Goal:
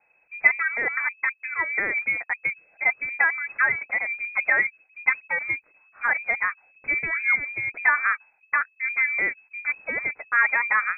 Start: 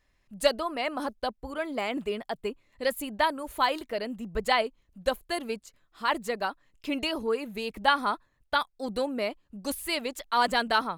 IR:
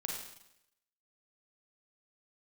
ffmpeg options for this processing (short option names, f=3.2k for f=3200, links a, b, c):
-filter_complex "[0:a]acrossover=split=220|1100[a][b][c];[a]aeval=exprs='0.0133*(abs(mod(val(0)/0.0133+3,4)-2)-1)':c=same[d];[c]alimiter=level_in=1dB:limit=-24dB:level=0:latency=1:release=34,volume=-1dB[e];[d][b][e]amix=inputs=3:normalize=0,lowpass=f=2.2k:t=q:w=0.5098,lowpass=f=2.2k:t=q:w=0.6013,lowpass=f=2.2k:t=q:w=0.9,lowpass=f=2.2k:t=q:w=2.563,afreqshift=-2600,volume=6dB"